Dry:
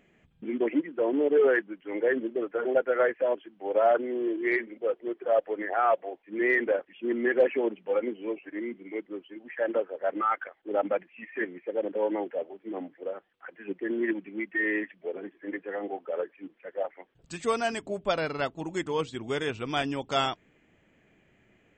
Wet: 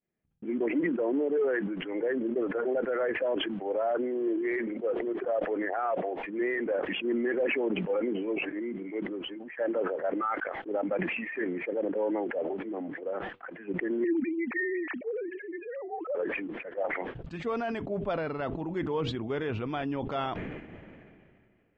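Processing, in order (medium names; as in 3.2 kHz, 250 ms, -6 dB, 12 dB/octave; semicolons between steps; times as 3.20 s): 14.04–16.15 s: formants replaced by sine waves; expander -50 dBFS; treble shelf 2.6 kHz -8.5 dB; peak limiter -21 dBFS, peak gain reduction 7.5 dB; distance through air 230 m; decay stretcher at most 27 dB/s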